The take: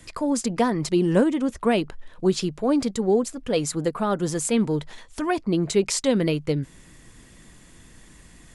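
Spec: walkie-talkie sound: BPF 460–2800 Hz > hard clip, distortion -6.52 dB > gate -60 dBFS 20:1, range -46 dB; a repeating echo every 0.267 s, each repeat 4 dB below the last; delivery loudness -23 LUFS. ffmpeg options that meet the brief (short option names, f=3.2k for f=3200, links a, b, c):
-af "highpass=460,lowpass=2.8k,aecho=1:1:267|534|801|1068|1335|1602|1869|2136|2403:0.631|0.398|0.25|0.158|0.0994|0.0626|0.0394|0.0249|0.0157,asoftclip=type=hard:threshold=-27.5dB,agate=range=-46dB:threshold=-60dB:ratio=20,volume=8.5dB"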